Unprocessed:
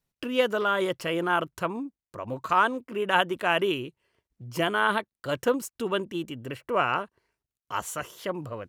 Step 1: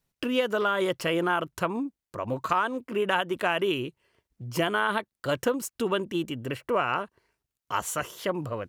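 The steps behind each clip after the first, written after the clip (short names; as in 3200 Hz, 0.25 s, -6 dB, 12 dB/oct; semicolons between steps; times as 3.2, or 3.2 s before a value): compressor 6:1, threshold -25 dBFS, peak gain reduction 9 dB; gain +3.5 dB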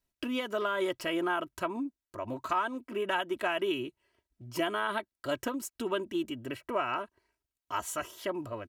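comb 3.1 ms, depth 60%; gain -6.5 dB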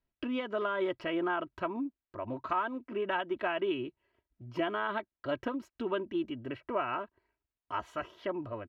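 air absorption 300 m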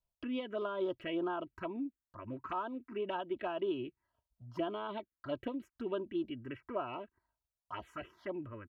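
envelope phaser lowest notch 300 Hz, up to 2100 Hz, full sweep at -28 dBFS; gain -2.5 dB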